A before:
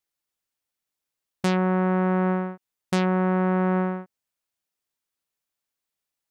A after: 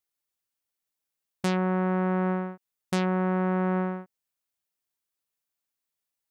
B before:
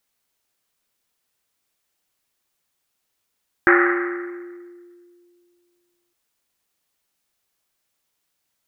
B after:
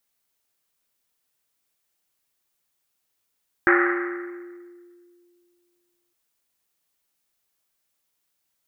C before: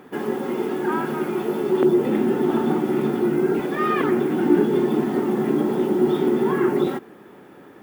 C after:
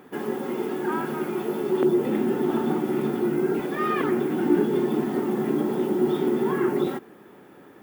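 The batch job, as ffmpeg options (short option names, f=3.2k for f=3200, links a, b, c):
-af "highshelf=f=9.2k:g=5,volume=-3.5dB"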